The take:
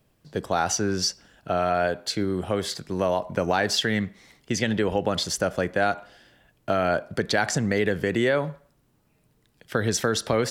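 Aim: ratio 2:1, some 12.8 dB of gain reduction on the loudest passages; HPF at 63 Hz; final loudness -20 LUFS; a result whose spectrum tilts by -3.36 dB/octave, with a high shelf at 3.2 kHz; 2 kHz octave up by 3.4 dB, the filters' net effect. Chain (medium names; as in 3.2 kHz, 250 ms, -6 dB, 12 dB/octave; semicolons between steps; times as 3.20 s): high-pass 63 Hz; peaking EQ 2 kHz +3.5 dB; treble shelf 3.2 kHz +3 dB; compression 2:1, threshold -42 dBFS; trim +16 dB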